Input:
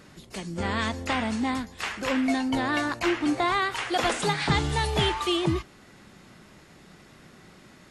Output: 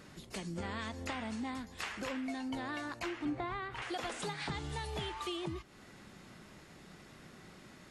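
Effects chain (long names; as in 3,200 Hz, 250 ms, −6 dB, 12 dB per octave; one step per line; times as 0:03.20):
downward compressor 5 to 1, threshold −34 dBFS, peak gain reduction 14 dB
0:03.25–0:03.82: bass and treble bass +10 dB, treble −14 dB
level −3.5 dB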